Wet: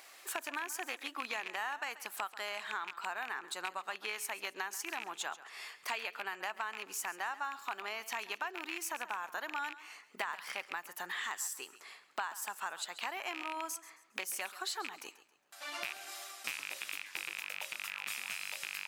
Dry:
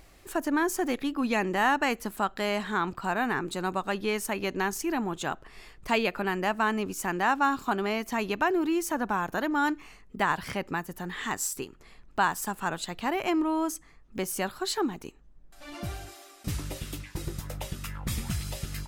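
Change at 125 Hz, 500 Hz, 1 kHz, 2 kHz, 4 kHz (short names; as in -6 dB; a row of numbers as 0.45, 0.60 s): under -30 dB, -17.0 dB, -11.0 dB, -6.5 dB, -4.0 dB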